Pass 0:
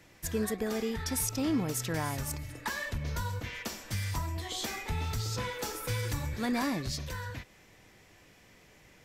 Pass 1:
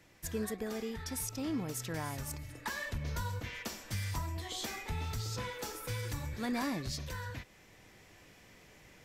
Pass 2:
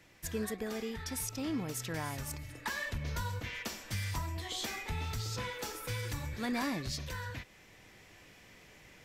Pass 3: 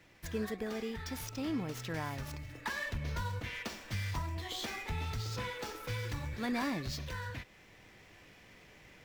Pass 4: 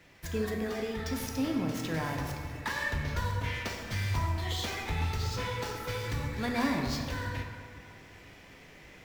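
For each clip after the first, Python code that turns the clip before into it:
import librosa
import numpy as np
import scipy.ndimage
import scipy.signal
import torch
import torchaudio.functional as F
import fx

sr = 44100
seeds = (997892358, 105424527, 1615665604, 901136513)

y1 = fx.rider(x, sr, range_db=10, speed_s=2.0)
y1 = F.gain(torch.from_numpy(y1), -5.0).numpy()
y2 = fx.peak_eq(y1, sr, hz=2600.0, db=3.0, octaves=1.7)
y3 = scipy.ndimage.median_filter(y2, 5, mode='constant')
y4 = fx.rev_plate(y3, sr, seeds[0], rt60_s=2.2, hf_ratio=0.5, predelay_ms=0, drr_db=2.0)
y4 = F.gain(torch.from_numpy(y4), 3.0).numpy()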